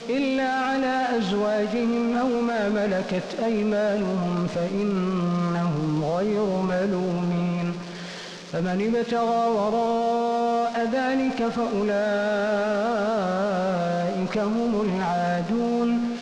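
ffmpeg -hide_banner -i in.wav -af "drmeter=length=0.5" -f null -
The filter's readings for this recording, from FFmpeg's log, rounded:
Channel 1: DR: 4.9
Overall DR: 4.9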